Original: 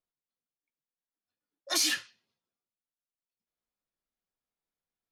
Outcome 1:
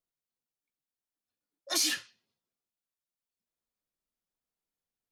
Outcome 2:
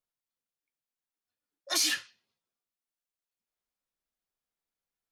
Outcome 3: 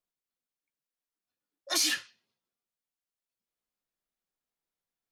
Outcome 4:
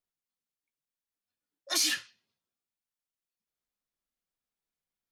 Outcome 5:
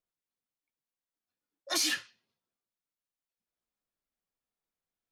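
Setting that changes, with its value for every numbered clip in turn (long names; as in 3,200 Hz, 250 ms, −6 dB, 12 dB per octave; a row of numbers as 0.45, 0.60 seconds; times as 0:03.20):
parametric band, centre frequency: 1,700, 200, 62, 550, 15,000 Hertz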